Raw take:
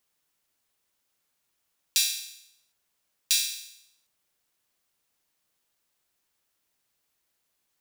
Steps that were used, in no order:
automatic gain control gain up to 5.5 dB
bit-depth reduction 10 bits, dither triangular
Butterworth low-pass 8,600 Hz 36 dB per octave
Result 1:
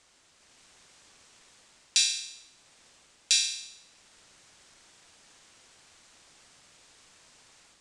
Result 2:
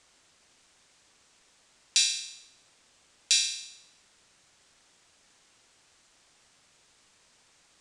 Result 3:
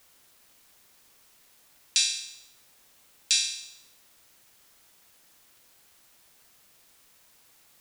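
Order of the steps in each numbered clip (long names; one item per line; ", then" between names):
bit-depth reduction, then automatic gain control, then Butterworth low-pass
automatic gain control, then bit-depth reduction, then Butterworth low-pass
automatic gain control, then Butterworth low-pass, then bit-depth reduction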